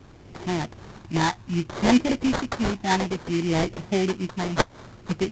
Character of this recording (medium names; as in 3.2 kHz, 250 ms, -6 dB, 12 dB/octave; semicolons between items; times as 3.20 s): phasing stages 12, 0.6 Hz, lowest notch 450–1300 Hz; aliases and images of a low sample rate 2.7 kHz, jitter 20%; µ-law